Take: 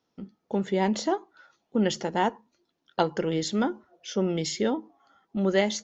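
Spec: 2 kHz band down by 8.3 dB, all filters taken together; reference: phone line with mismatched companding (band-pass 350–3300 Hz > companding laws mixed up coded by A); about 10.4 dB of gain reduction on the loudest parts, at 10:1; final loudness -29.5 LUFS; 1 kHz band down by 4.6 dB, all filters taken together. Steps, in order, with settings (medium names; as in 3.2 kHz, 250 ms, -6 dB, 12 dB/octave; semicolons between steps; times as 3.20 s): peaking EQ 1 kHz -4.5 dB; peaking EQ 2 kHz -8 dB; compression 10:1, threshold -31 dBFS; band-pass 350–3300 Hz; companding laws mixed up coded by A; trim +14.5 dB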